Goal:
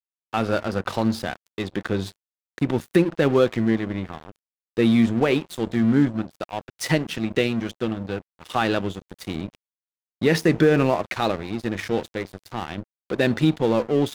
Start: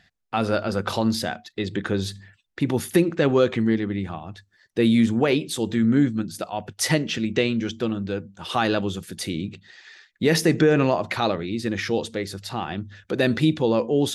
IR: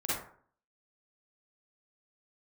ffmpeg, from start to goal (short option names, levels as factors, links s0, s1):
-af "bass=f=250:g=0,treble=f=4000:g=-6,aeval=exprs='sgn(val(0))*max(abs(val(0))-0.02,0)':c=same,volume=1.19"